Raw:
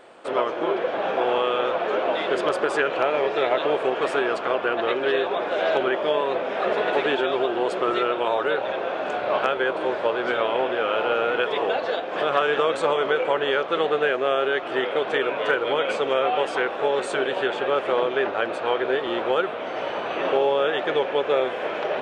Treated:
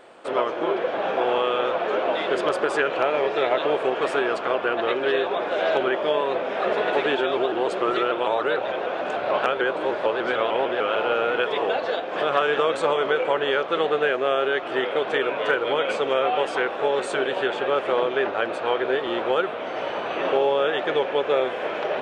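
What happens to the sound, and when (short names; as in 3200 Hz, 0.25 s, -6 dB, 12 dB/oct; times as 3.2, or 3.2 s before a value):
7.37–10.96 shaped vibrato saw up 6.7 Hz, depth 100 cents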